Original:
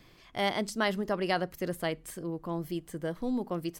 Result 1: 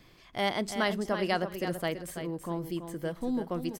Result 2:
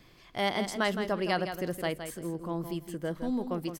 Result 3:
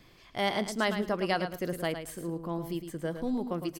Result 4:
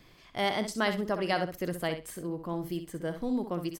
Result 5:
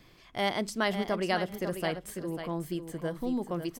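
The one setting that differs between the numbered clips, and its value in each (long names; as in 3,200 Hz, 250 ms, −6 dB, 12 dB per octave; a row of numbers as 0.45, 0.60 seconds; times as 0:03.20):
repeating echo, delay time: 332, 165, 109, 63, 546 milliseconds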